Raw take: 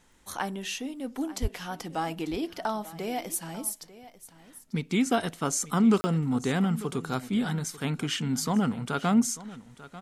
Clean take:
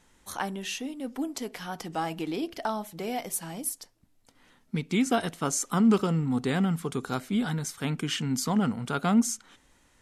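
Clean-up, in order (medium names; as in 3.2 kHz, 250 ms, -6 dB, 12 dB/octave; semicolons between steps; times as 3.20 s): de-click; de-plosive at 1.41 s; interpolate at 6.01 s, 30 ms; inverse comb 893 ms -17 dB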